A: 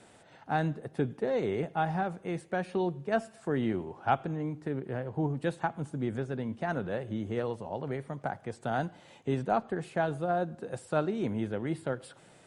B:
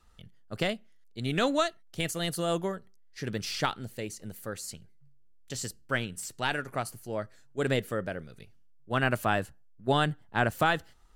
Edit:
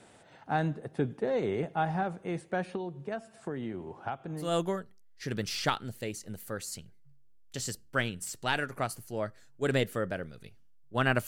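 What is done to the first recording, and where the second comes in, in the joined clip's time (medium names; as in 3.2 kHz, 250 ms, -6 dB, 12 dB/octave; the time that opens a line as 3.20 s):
A
2.75–4.52 s: compression 6:1, threshold -33 dBFS
4.44 s: go over to B from 2.40 s, crossfade 0.16 s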